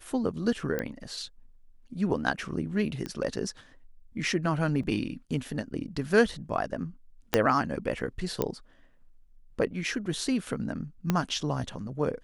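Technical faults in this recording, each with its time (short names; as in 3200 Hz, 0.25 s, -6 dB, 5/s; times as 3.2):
0.79 pop -17 dBFS
3.06 pop -21 dBFS
4.83 gap 4.6 ms
7.34 pop -6 dBFS
8.42 pop -12 dBFS
11.1 pop -11 dBFS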